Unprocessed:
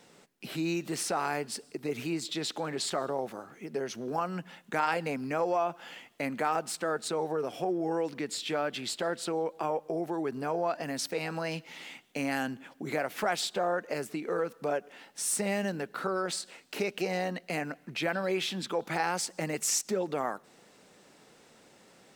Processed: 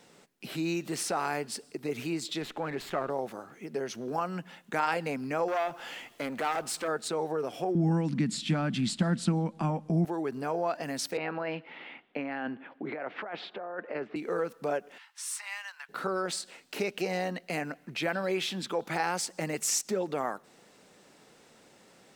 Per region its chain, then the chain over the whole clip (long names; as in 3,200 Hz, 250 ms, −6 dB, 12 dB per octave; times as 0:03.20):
0:02.42–0:03.10: high shelf with overshoot 3,200 Hz −9.5 dB, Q 1.5 + windowed peak hold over 3 samples
0:05.48–0:06.88: mu-law and A-law mismatch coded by mu + parametric band 190 Hz −6.5 dB 0.44 octaves + saturating transformer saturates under 1,300 Hz
0:07.75–0:10.05: Butterworth low-pass 11,000 Hz + low shelf with overshoot 300 Hz +13 dB, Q 3
0:11.17–0:14.16: low-pass filter 4,400 Hz 24 dB per octave + three-way crossover with the lows and the highs turned down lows −12 dB, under 210 Hz, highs −21 dB, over 2,800 Hz + compressor whose output falls as the input rises −35 dBFS
0:14.98–0:15.89: elliptic high-pass filter 980 Hz, stop band 70 dB + high-shelf EQ 5,800 Hz −7.5 dB
whole clip: no processing